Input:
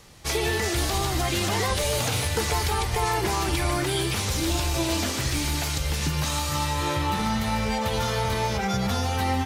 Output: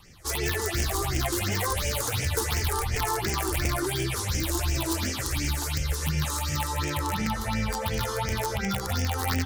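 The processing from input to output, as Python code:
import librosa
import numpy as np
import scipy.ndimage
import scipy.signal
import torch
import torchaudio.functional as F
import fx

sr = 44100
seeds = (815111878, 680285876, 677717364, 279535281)

y = fx.hum_notches(x, sr, base_hz=60, count=5)
y = (np.mod(10.0 ** (16.5 / 20.0) * y + 1.0, 2.0) - 1.0) / 10.0 ** (16.5 / 20.0)
y = fx.phaser_stages(y, sr, stages=6, low_hz=160.0, high_hz=1100.0, hz=2.8, feedback_pct=25)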